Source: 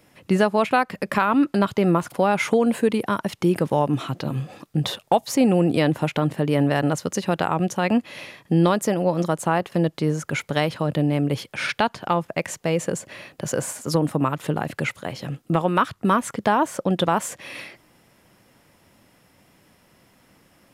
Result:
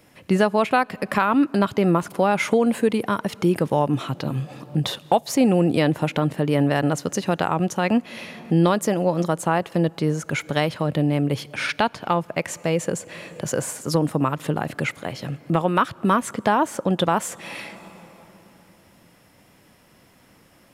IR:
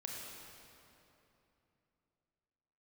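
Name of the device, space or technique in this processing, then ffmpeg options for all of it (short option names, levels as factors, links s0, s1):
ducked reverb: -filter_complex "[0:a]asplit=3[s0][s1][s2];[1:a]atrim=start_sample=2205[s3];[s1][s3]afir=irnorm=-1:irlink=0[s4];[s2]apad=whole_len=914619[s5];[s4][s5]sidechaincompress=threshold=0.0126:ratio=4:attack=16:release=324,volume=0.422[s6];[s0][s6]amix=inputs=2:normalize=0"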